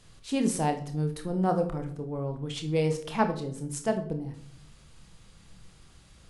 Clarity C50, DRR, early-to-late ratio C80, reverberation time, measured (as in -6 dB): 11.0 dB, 5.5 dB, 15.0 dB, 0.65 s